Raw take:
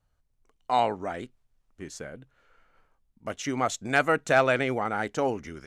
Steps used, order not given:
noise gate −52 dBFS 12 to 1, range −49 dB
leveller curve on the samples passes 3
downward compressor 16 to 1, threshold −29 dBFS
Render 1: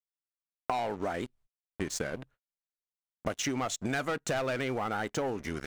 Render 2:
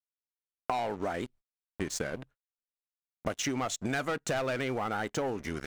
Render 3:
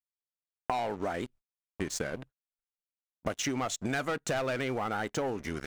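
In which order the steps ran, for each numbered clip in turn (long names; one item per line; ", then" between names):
leveller curve on the samples, then noise gate, then downward compressor
leveller curve on the samples, then downward compressor, then noise gate
noise gate, then leveller curve on the samples, then downward compressor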